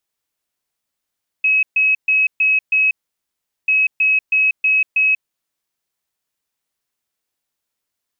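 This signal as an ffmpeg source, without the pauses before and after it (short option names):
-f lavfi -i "aevalsrc='0.266*sin(2*PI*2560*t)*clip(min(mod(mod(t,2.24),0.32),0.19-mod(mod(t,2.24),0.32))/0.005,0,1)*lt(mod(t,2.24),1.6)':d=4.48:s=44100"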